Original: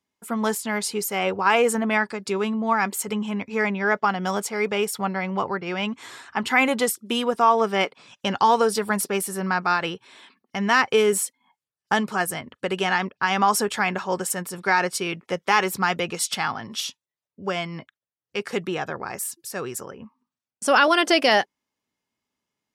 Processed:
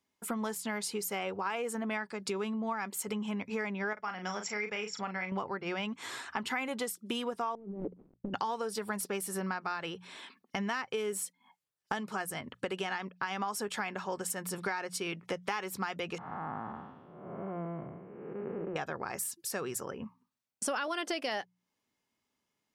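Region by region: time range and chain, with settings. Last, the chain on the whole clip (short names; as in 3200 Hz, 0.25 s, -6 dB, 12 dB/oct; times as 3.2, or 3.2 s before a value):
3.93–5.32 rippled Chebyshev low-pass 7500 Hz, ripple 9 dB + doubler 38 ms -7.5 dB
7.55–8.34 switching dead time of 0.26 ms + synth low-pass 310 Hz, resonance Q 1.7 + negative-ratio compressor -34 dBFS
16.18–18.76 time blur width 0.485 s + LPF 1300 Hz 24 dB/oct
whole clip: notches 60/120/180 Hz; compressor 6:1, threshold -33 dBFS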